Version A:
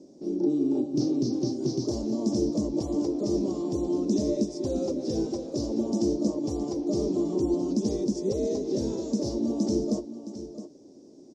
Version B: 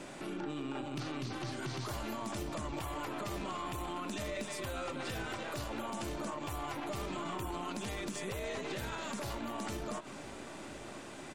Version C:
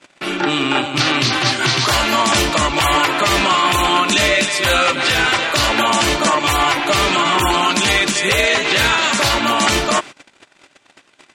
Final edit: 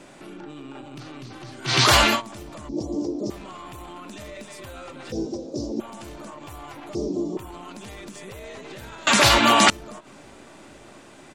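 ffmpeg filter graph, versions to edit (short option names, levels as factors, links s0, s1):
-filter_complex "[2:a]asplit=2[s0][s1];[0:a]asplit=3[s2][s3][s4];[1:a]asplit=6[s5][s6][s7][s8][s9][s10];[s5]atrim=end=1.8[s11];[s0]atrim=start=1.64:end=2.22[s12];[s6]atrim=start=2.06:end=2.692[s13];[s2]atrim=start=2.688:end=3.302[s14];[s7]atrim=start=3.298:end=5.122[s15];[s3]atrim=start=5.118:end=5.802[s16];[s8]atrim=start=5.798:end=6.952[s17];[s4]atrim=start=6.948:end=7.372[s18];[s9]atrim=start=7.368:end=9.072[s19];[s1]atrim=start=9.068:end=9.702[s20];[s10]atrim=start=9.698[s21];[s11][s12]acrossfade=d=0.16:c1=tri:c2=tri[s22];[s22][s13]acrossfade=d=0.16:c1=tri:c2=tri[s23];[s23][s14]acrossfade=d=0.004:c1=hsin:c2=hsin[s24];[s24][s15]acrossfade=d=0.004:c1=hsin:c2=hsin[s25];[s25][s16]acrossfade=d=0.004:c1=hsin:c2=hsin[s26];[s26][s17]acrossfade=d=0.004:c1=hsin:c2=hsin[s27];[s27][s18]acrossfade=d=0.004:c1=hsin:c2=hsin[s28];[s28][s19]acrossfade=d=0.004:c1=hsin:c2=hsin[s29];[s29][s20]acrossfade=d=0.004:c1=hsin:c2=hsin[s30];[s30][s21]acrossfade=d=0.004:c1=hsin:c2=hsin"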